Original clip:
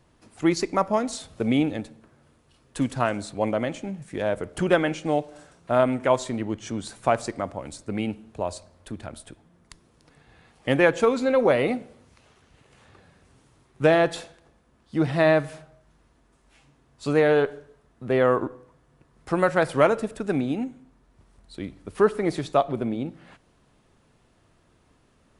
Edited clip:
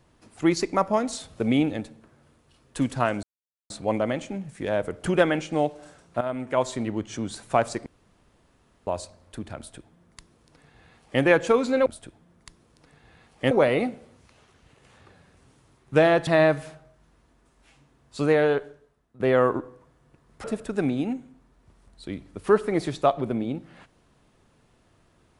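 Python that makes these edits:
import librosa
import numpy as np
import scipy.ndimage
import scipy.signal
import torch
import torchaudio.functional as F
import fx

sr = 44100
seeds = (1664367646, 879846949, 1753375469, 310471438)

y = fx.edit(x, sr, fx.insert_silence(at_s=3.23, length_s=0.47),
    fx.fade_in_from(start_s=5.74, length_s=0.57, floor_db=-13.5),
    fx.room_tone_fill(start_s=7.39, length_s=1.01),
    fx.duplicate(start_s=9.1, length_s=1.65, to_s=11.39),
    fx.cut(start_s=14.15, length_s=0.99),
    fx.fade_out_to(start_s=17.11, length_s=0.96, floor_db=-15.0),
    fx.cut(start_s=19.31, length_s=0.64), tone=tone)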